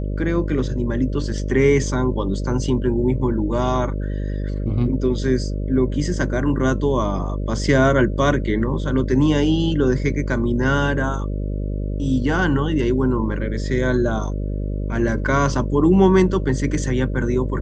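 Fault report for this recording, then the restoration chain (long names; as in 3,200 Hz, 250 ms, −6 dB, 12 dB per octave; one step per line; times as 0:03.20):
mains buzz 50 Hz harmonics 12 −24 dBFS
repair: hum removal 50 Hz, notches 12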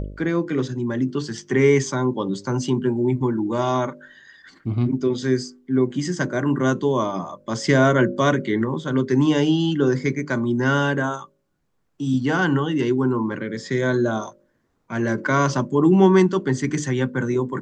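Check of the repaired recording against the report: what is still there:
none of them is left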